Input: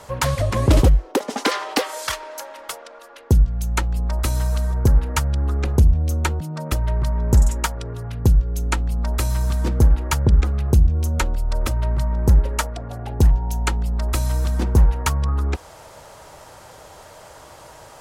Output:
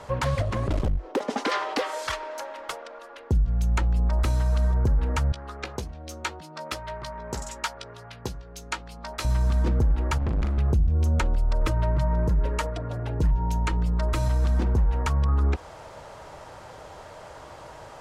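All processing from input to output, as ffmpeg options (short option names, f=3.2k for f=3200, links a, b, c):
-filter_complex "[0:a]asettb=1/sr,asplit=3[a][b][c];[a]atrim=end=0.424[d];[b]atrim=start=0.42:end=1.08,asetpts=PTS-STARTPTS,afade=t=in:d=0.004:c=qsin,afade=t=out:st=0.656:d=0.004:c=qsin,aeval=exprs='clip(val(0),-1,0.1)':c=same,acompressor=threshold=-27dB:ratio=2:attack=3.2:release=140:knee=1:detection=peak[e];[c]atrim=start=1.076[f];[d][e]acrossfade=d=0.004:c1=hsin:c2=qsin[g];[g][f]acrossfade=d=0.004:c1=qsin:c2=hsin,asettb=1/sr,asplit=3[h][i][j];[h]atrim=end=5.324[k];[i]atrim=start=5.32:end=9.25,asetpts=PTS-STARTPTS,afade=t=in:d=0.004:c=qsin,afade=t=out:st=3.926:d=0.004:c=qsin,highpass=f=1.1k:p=1,equalizer=f=4.6k:t=o:w=0.93:g=4.5,asplit=2[l][m];[m]adelay=16,volume=-9dB[n];[l][n]amix=inputs=2:normalize=0,atrim=end_sample=173313[o];[j]atrim=start=9.246[p];[k][o]acrossfade=d=0.004:c1=hsin:c2=qsin[q];[q][p]acrossfade=d=0.004:c1=qsin:c2=hsin,asettb=1/sr,asplit=3[r][s][t];[r]atrim=end=10.184[u];[s]atrim=start=10.18:end=10.58,asetpts=PTS-STARTPTS,afade=t=in:d=0.004:c=qsin,afade=t=out:st=0.396:d=0.004:c=qsin,volume=25dB,asoftclip=hard,volume=-25dB,asplit=2[v][w];[w]adelay=40,volume=-5.5dB[x];[v][x]amix=inputs=2:normalize=0,atrim=end_sample=17640[y];[t]atrim=start=10.576[z];[u][y]acrossfade=d=0.004:c1=hsin:c2=qsin[aa];[aa][z]acrossfade=d=0.004:c1=qsin:c2=hsin,asettb=1/sr,asplit=3[ab][ac][ad];[ab]atrim=end=11.614[ae];[ac]atrim=start=11.61:end=14.28,asetpts=PTS-STARTPTS,afade=t=in:d=0.004:c=qsin,afade=t=out:st=2.666:d=0.004:c=qsin,asuperstop=centerf=770:order=4:qfactor=6.7,aecho=1:1:6.5:0.51,atrim=end_sample=117747[af];[ad]atrim=start=14.276[ag];[ae][af]acrossfade=d=0.004:c1=hsin:c2=qsin[ah];[ah][ag]acrossfade=d=0.004:c1=qsin:c2=hsin,aemphasis=mode=reproduction:type=50fm,alimiter=limit=-16dB:level=0:latency=1:release=51"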